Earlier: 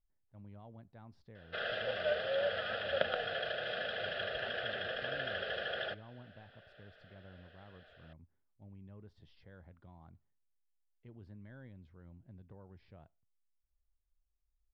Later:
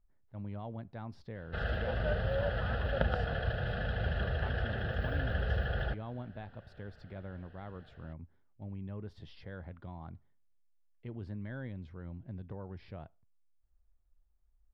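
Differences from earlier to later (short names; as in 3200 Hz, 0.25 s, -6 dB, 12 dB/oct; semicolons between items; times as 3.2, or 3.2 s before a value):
speech +11.0 dB; background: remove speaker cabinet 430–8300 Hz, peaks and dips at 610 Hz +5 dB, 890 Hz -9 dB, 2300 Hz +8 dB, 3400 Hz +8 dB, 5000 Hz +5 dB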